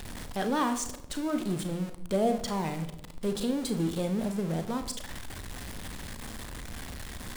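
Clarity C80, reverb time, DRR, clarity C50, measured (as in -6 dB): 15.0 dB, 0.90 s, 7.5 dB, 12.0 dB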